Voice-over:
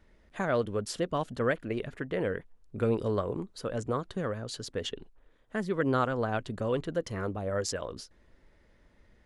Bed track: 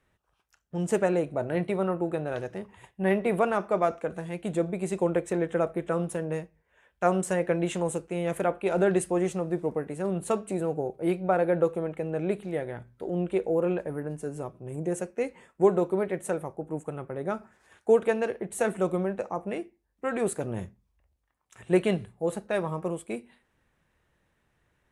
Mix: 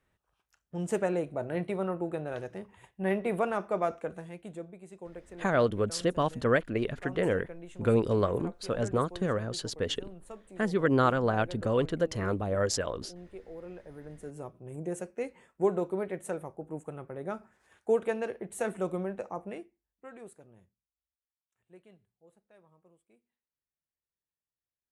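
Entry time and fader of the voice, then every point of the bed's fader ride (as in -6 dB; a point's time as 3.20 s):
5.05 s, +3.0 dB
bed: 4.08 s -4.5 dB
4.84 s -19 dB
13.61 s -19 dB
14.45 s -5.5 dB
19.40 s -5.5 dB
20.94 s -32.5 dB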